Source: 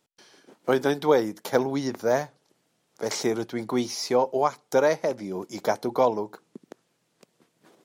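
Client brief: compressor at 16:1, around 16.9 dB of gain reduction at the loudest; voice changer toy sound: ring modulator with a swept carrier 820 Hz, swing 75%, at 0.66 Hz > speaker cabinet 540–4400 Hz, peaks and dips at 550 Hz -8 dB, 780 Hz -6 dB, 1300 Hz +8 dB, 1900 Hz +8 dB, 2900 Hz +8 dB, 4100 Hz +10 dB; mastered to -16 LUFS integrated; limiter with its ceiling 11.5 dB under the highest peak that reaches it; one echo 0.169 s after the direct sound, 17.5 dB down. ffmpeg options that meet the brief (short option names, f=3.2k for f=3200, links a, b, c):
-af "acompressor=threshold=-32dB:ratio=16,alimiter=level_in=6.5dB:limit=-24dB:level=0:latency=1,volume=-6.5dB,aecho=1:1:169:0.133,aeval=exprs='val(0)*sin(2*PI*820*n/s+820*0.75/0.66*sin(2*PI*0.66*n/s))':c=same,highpass=540,equalizer=f=550:t=q:w=4:g=-8,equalizer=f=780:t=q:w=4:g=-6,equalizer=f=1.3k:t=q:w=4:g=8,equalizer=f=1.9k:t=q:w=4:g=8,equalizer=f=2.9k:t=q:w=4:g=8,equalizer=f=4.1k:t=q:w=4:g=10,lowpass=f=4.4k:w=0.5412,lowpass=f=4.4k:w=1.3066,volume=24.5dB"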